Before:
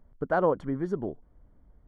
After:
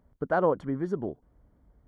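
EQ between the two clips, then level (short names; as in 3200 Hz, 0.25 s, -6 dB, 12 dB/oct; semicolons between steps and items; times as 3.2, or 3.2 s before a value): HPF 44 Hz; 0.0 dB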